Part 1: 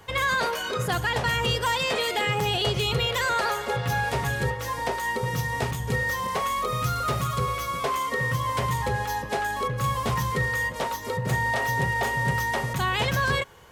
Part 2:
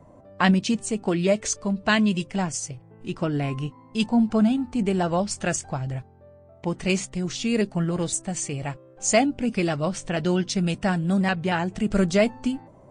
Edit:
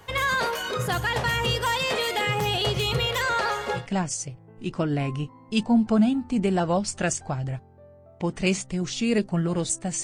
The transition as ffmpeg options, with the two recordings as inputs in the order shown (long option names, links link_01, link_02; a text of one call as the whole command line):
ffmpeg -i cue0.wav -i cue1.wav -filter_complex "[0:a]asettb=1/sr,asplit=3[link_01][link_02][link_03];[link_01]atrim=end=3.224[link_04];[link_02]atrim=start=3.22:end=3.88,asetpts=PTS-STARTPTS,afade=type=in:duration=0.004:curve=qsin,afade=type=out:start_time=0.656:duration=0.004:curve=qsin,acrossover=split=8200[link_05][link_06];[link_06]acompressor=threshold=-58dB:ratio=4:attack=1:release=60[link_07];[link_05][link_07]amix=inputs=2:normalize=0[link_08];[link_03]atrim=start=3.876[link_09];[link_04][link_08]acrossfade=duration=0.004:curve1=hsin:curve2=qsin[link_10];[link_10][link_09]acrossfade=duration=0.004:curve1=qsin:curve2=hsin,apad=whole_dur=10.03,atrim=end=10.03,atrim=end=3.88,asetpts=PTS-STARTPTS[link_11];[1:a]atrim=start=2.15:end=8.46,asetpts=PTS-STARTPTS[link_12];[link_11][link_12]acrossfade=duration=0.16:curve1=tri:curve2=tri" out.wav